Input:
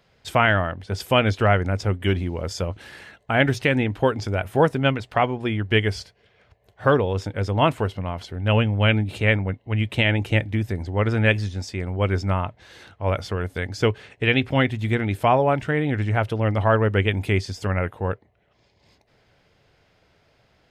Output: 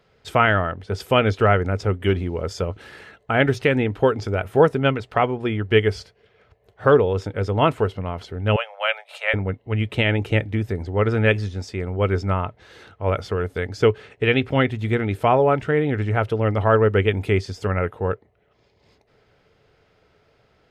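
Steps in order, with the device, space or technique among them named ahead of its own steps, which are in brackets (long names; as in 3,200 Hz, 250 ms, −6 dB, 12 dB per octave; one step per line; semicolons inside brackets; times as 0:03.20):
inside a helmet (high-shelf EQ 4,600 Hz −5 dB; hollow resonant body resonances 430/1,300 Hz, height 7 dB, ringing for 30 ms)
0:08.56–0:09.34: Butterworth high-pass 550 Hz 72 dB per octave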